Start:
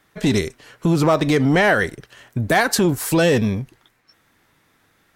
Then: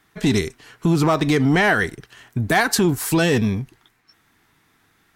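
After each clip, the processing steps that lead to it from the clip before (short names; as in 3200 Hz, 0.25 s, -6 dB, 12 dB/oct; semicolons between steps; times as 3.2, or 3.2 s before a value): bell 550 Hz -14 dB 0.22 oct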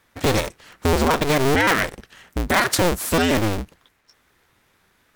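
cycle switcher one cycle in 2, inverted; gain -1 dB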